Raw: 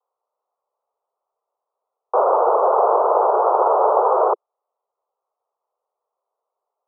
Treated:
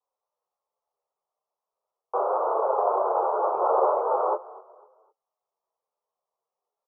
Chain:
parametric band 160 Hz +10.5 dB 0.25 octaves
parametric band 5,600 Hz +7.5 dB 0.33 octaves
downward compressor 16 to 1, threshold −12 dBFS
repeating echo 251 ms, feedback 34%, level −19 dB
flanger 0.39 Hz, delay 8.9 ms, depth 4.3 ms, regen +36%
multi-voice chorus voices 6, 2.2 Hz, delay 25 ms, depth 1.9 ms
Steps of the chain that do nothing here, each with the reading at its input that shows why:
parametric band 160 Hz: nothing at its input below 320 Hz
parametric band 5,600 Hz: nothing at its input above 1,500 Hz

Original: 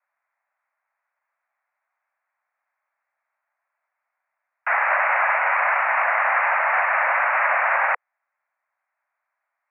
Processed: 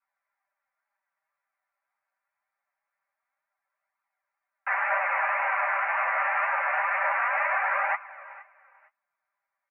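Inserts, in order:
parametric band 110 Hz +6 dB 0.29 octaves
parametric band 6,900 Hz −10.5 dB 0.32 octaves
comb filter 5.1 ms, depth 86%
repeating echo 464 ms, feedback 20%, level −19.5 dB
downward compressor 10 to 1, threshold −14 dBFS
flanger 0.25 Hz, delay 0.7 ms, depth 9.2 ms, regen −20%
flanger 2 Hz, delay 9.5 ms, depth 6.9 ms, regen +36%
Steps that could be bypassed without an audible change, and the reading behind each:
parametric band 110 Hz: nothing at its input below 450 Hz
parametric band 6,900 Hz: nothing at its input above 2,900 Hz

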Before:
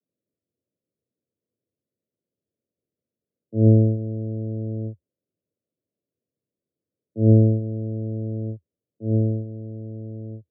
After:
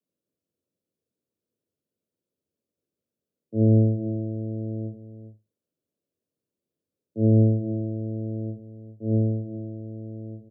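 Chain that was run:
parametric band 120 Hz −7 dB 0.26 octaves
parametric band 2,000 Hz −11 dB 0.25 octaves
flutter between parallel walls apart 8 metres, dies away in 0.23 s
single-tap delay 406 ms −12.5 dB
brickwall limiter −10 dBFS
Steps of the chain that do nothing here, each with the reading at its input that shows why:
parametric band 2,000 Hz: nothing at its input above 680 Hz

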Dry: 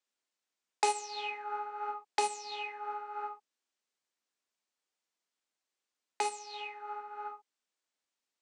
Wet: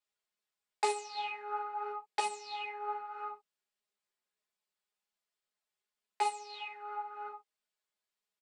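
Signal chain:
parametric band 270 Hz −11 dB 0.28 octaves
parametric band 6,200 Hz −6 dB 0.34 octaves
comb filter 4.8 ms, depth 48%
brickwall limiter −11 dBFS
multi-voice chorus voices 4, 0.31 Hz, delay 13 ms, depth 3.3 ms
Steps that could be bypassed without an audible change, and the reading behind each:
brickwall limiter −11 dBFS: peak of its input −13.0 dBFS

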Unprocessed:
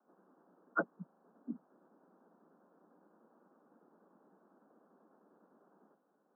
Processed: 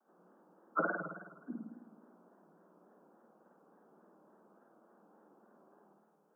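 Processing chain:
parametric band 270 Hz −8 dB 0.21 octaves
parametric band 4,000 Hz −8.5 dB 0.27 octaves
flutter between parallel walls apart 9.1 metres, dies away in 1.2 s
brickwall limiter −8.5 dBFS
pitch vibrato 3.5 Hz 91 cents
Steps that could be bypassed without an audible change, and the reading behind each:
parametric band 4,000 Hz: nothing at its input above 1,600 Hz
brickwall limiter −8.5 dBFS: peak of its input −20.0 dBFS

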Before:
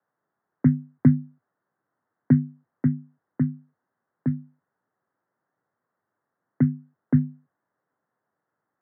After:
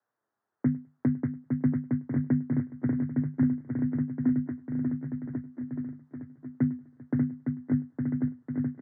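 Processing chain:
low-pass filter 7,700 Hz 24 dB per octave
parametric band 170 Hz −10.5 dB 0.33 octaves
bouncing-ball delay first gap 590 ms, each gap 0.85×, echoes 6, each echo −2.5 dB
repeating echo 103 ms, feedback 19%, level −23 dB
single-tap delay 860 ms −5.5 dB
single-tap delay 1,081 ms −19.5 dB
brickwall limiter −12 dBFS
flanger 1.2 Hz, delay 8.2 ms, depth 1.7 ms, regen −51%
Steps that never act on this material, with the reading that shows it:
low-pass filter 7,700 Hz: nothing at its input above 400 Hz

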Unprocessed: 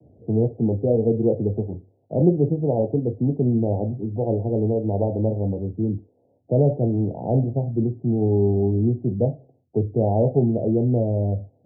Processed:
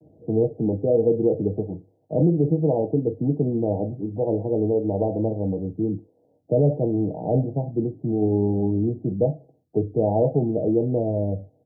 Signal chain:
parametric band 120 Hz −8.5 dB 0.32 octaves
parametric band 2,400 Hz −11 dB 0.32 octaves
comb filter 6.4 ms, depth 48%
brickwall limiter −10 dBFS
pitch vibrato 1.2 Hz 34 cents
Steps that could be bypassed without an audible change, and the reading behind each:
parametric band 2,400 Hz: nothing at its input above 850 Hz

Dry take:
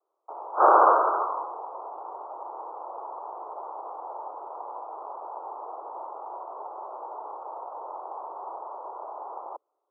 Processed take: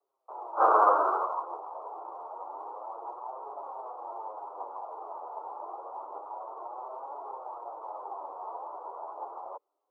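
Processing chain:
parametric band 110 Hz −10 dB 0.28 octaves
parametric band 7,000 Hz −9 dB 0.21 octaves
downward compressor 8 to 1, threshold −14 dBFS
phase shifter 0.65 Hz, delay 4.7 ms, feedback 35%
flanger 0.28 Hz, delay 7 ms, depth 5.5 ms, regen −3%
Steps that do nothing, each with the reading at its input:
parametric band 110 Hz: nothing at its input below 290 Hz
parametric band 7,000 Hz: nothing at its input above 1,500 Hz

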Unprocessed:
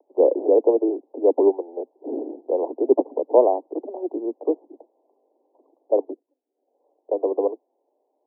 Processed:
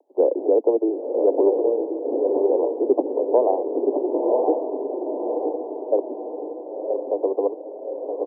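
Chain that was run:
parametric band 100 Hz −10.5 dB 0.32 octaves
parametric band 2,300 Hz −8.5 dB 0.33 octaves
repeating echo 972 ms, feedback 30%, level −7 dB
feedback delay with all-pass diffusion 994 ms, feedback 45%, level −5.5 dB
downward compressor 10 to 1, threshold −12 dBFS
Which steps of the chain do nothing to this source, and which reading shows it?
parametric band 100 Hz: nothing at its input below 230 Hz
parametric band 2,300 Hz: nothing at its input above 1,100 Hz

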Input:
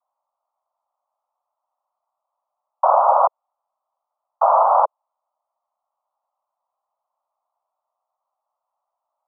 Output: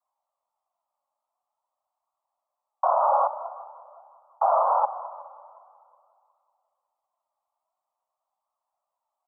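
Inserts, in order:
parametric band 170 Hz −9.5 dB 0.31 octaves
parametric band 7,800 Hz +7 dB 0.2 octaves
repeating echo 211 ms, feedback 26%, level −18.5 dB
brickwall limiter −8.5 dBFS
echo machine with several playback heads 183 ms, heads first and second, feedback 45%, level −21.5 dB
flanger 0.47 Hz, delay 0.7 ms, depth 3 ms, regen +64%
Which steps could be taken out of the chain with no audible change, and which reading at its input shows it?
parametric band 170 Hz: nothing at its input below 450 Hz
parametric band 7,800 Hz: nothing at its input above 1,500 Hz

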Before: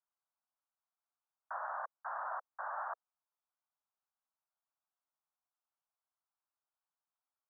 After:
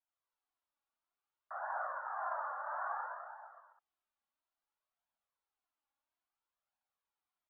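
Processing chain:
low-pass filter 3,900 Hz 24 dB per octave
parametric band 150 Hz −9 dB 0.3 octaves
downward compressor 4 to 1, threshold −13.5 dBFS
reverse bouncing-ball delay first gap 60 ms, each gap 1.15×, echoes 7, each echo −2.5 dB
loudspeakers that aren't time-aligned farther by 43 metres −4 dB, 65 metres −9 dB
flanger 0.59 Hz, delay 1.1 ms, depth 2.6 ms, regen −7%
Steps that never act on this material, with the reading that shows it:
low-pass filter 3,900 Hz: nothing at its input above 1,900 Hz
parametric band 150 Hz: nothing at its input below 480 Hz
downward compressor, threshold −13.5 dBFS: peak of its input −29.0 dBFS

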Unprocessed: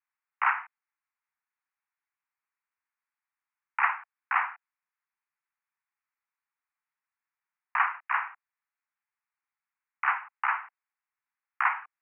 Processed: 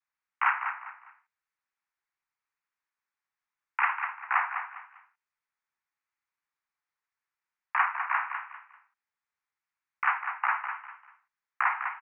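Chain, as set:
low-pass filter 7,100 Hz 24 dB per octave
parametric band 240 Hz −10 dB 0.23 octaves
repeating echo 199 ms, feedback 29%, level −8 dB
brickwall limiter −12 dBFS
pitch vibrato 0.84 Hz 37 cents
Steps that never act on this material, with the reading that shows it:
low-pass filter 7,100 Hz: nothing at its input above 3,000 Hz
parametric band 240 Hz: nothing at its input below 640 Hz

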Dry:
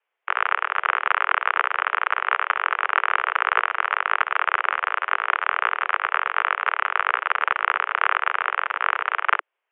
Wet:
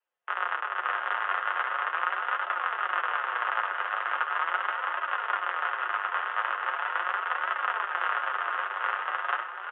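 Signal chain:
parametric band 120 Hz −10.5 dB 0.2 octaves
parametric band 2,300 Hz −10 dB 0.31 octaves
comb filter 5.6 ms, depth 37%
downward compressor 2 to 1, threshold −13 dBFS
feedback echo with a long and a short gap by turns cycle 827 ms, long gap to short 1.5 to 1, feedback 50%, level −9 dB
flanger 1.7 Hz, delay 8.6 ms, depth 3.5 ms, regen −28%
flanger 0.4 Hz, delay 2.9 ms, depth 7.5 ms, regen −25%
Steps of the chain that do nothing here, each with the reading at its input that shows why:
parametric band 120 Hz: nothing at its input below 340 Hz

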